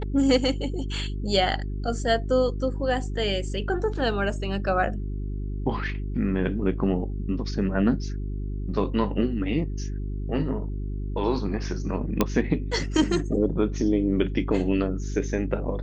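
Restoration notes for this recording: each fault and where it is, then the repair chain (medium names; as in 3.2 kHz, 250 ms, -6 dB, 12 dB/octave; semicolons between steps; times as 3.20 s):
hum 50 Hz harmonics 8 -30 dBFS
12.21 s: pop -6 dBFS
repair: de-click; de-hum 50 Hz, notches 8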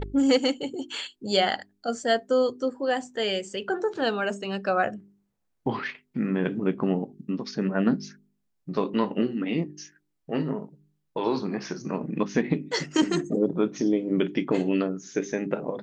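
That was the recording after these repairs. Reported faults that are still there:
nothing left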